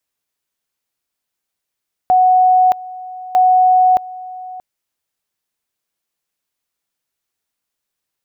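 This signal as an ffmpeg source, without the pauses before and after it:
-f lavfi -i "aevalsrc='pow(10,(-7.5-19.5*gte(mod(t,1.25),0.62))/20)*sin(2*PI*739*t)':d=2.5:s=44100"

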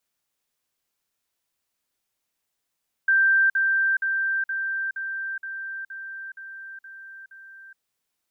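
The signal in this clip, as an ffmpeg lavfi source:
-f lavfi -i "aevalsrc='pow(10,(-15.5-3*floor(t/0.47))/20)*sin(2*PI*1570*t)*clip(min(mod(t,0.47),0.42-mod(t,0.47))/0.005,0,1)':d=4.7:s=44100"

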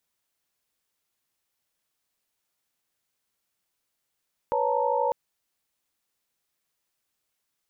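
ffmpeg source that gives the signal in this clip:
-f lavfi -i "aevalsrc='0.0422*(sin(2*PI*493.88*t)+sin(2*PI*554.37*t)+sin(2*PI*880*t)+sin(2*PI*932.33*t))':d=0.6:s=44100"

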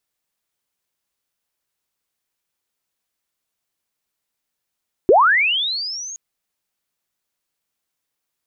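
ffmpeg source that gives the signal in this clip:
-f lavfi -i "aevalsrc='pow(10,(-7-22.5*t/1.07)/20)*sin(2*PI*(330*t+6370*t*t/(2*1.07)))':d=1.07:s=44100"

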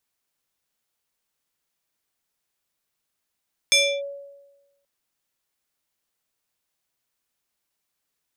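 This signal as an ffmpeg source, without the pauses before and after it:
-f lavfi -i "aevalsrc='0.251*pow(10,-3*t/1.13)*sin(2*PI*562*t+2.3*clip(1-t/0.3,0,1)*sin(2*PI*5.19*562*t))':d=1.13:s=44100"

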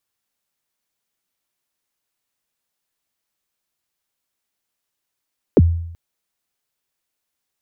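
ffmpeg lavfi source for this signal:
-f lavfi -i "aevalsrc='0.562*pow(10,-3*t/0.76)*sin(2*PI*(540*0.037/log(84/540)*(exp(log(84/540)*min(t,0.037)/0.037)-1)+84*max(t-0.037,0)))':d=0.38:s=44100"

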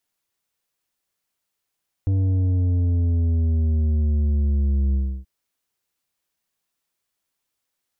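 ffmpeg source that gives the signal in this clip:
-f lavfi -i "aevalsrc='0.126*clip((3.18-t)/0.31,0,1)*tanh(2.51*sin(2*PI*97*3.18/log(65/97)*(exp(log(65/97)*t/3.18)-1)))/tanh(2.51)':d=3.18:s=44100"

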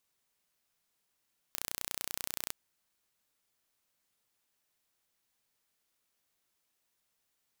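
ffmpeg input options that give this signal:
-f lavfi -i "aevalsrc='0.376*eq(mod(n,1451),0)':d=0.97:s=44100"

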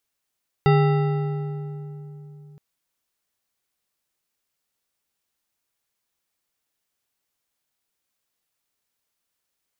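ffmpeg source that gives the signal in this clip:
-f lavfi -i "aevalsrc='0.2*pow(10,-3*t/3.83)*sin(2*PI*148*t)+0.126*pow(10,-3*t/2.825)*sin(2*PI*408*t)+0.0794*pow(10,-3*t/2.309)*sin(2*PI*799.8*t)+0.0501*pow(10,-3*t/1.986)*sin(2*PI*1322.1*t)+0.0316*pow(10,-3*t/1.761)*sin(2*PI*1974.3*t)+0.02*pow(10,-3*t/1.592)*sin(2*PI*2758.7*t)+0.0126*pow(10,-3*t/1.462)*sin(2*PI*3671.9*t)+0.00794*pow(10,-3*t/1.356)*sin(2*PI*4716.8*t)':d=1.92:s=44100"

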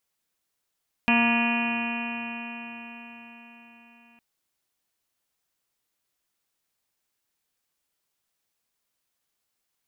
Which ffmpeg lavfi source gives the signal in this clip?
-f lavfi -i "aevalsrc='0.0891*pow(10,-3*t/4.91)*sin(2*PI*233.14*t)+0.01*pow(10,-3*t/4.91)*sin(2*PI*467.12*t)+0.0376*pow(10,-3*t/4.91)*sin(2*PI*702.76*t)+0.0398*pow(10,-3*t/4.91)*sin(2*PI*940.9*t)+0.0224*pow(10,-3*t/4.91)*sin(2*PI*1182.35*t)+0.0106*pow(10,-3*t/4.91)*sin(2*PI*1427.88*t)+0.0316*pow(10,-3*t/4.91)*sin(2*PI*1678.27*t)+0.0178*pow(10,-3*t/4.91)*sin(2*PI*1934.25*t)+0.0133*pow(10,-3*t/4.91)*sin(2*PI*2196.55*t)+0.0841*pow(10,-3*t/4.91)*sin(2*PI*2465.84*t)+0.0447*pow(10,-3*t/4.91)*sin(2*PI*2742.77*t)+0.0168*pow(10,-3*t/4.91)*sin(2*PI*3027.95*t)':d=3.11:s=44100"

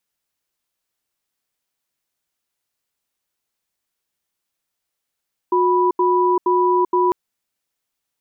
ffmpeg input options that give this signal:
-f lavfi -i "aevalsrc='0.158*(sin(2*PI*362*t)+sin(2*PI*985*t))*clip(min(mod(t,0.47),0.39-mod(t,0.47))/0.005,0,1)':d=1.6:s=44100"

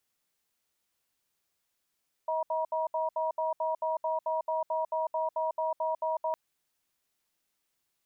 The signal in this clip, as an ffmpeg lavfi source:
-f lavfi -i "aevalsrc='0.0316*(sin(2*PI*636*t)+sin(2*PI*955*t))*clip(min(mod(t,0.22),0.15-mod(t,0.22))/0.005,0,1)':d=4.06:s=44100"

